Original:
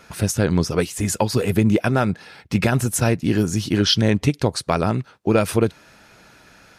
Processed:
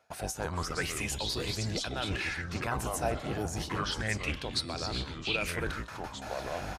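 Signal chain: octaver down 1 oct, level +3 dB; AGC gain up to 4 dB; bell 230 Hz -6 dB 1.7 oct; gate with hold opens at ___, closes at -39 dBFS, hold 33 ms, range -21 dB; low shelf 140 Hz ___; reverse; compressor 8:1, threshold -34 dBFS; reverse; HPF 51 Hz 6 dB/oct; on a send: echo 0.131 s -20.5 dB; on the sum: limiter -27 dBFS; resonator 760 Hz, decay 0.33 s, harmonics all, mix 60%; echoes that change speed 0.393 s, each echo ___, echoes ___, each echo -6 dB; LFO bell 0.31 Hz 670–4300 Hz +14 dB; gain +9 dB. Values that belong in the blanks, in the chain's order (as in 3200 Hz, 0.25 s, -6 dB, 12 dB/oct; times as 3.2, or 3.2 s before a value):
-37 dBFS, -9 dB, -4 st, 2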